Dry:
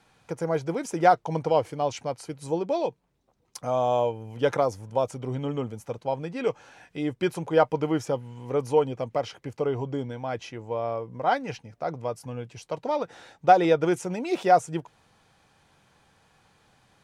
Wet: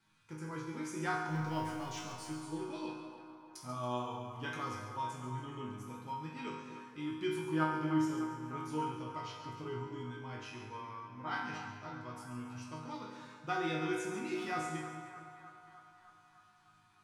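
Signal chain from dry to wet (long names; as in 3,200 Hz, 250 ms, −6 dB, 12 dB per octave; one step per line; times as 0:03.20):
0:01.28–0:02.29: mu-law and A-law mismatch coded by mu
flat-topped bell 590 Hz −15.5 dB 1 octave
resonators tuned to a chord G#2 minor, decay 0.82 s
hum removal 61.36 Hz, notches 3
on a send: echo with a time of its own for lows and highs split 720 Hz, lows 234 ms, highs 140 ms, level −10.5 dB
on the sum: pitch vibrato 2 Hz 8 cents
feedback echo with a band-pass in the loop 304 ms, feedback 74%, band-pass 1,100 Hz, level −10 dB
level +10 dB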